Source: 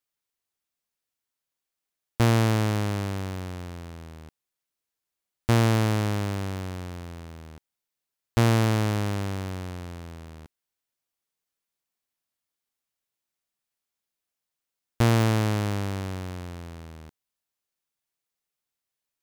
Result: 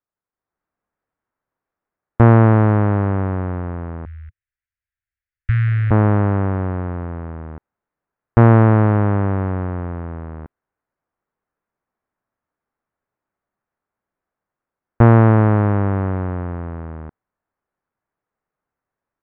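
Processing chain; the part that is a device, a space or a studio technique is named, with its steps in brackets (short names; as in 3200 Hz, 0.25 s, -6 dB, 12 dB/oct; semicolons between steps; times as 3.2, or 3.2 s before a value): 4.05–5.91 inverse Chebyshev band-stop 180–1000 Hz, stop band 40 dB; action camera in a waterproof case (LPF 1600 Hz 24 dB/oct; AGC gain up to 10 dB; gain +2 dB; AAC 128 kbps 48000 Hz)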